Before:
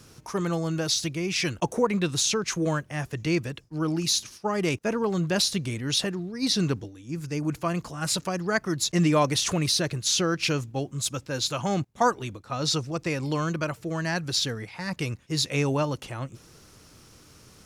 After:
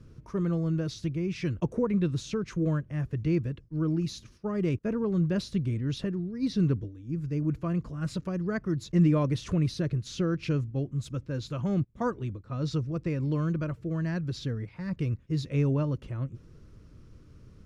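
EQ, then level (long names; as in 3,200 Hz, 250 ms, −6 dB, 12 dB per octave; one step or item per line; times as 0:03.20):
spectral tilt −3.5 dB per octave
parametric band 790 Hz −11 dB 0.42 octaves
high-shelf EQ 5,100 Hz −6 dB
−7.5 dB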